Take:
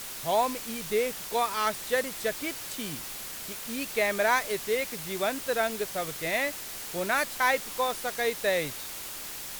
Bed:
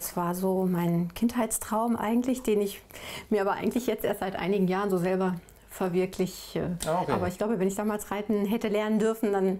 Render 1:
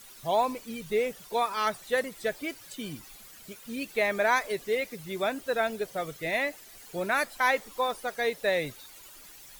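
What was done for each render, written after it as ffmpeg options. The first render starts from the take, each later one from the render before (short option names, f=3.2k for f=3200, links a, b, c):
-af "afftdn=nr=14:nf=-39"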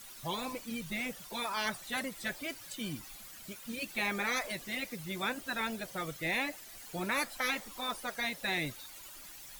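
-af "afftfilt=real='re*lt(hypot(re,im),0.2)':imag='im*lt(hypot(re,im),0.2)':win_size=1024:overlap=0.75,equalizer=f=430:w=6.3:g=-9"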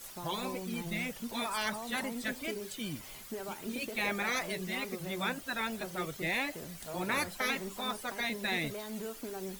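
-filter_complex "[1:a]volume=-15.5dB[a];[0:a][a]amix=inputs=2:normalize=0"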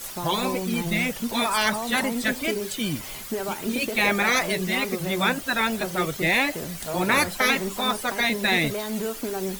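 -af "volume=11.5dB"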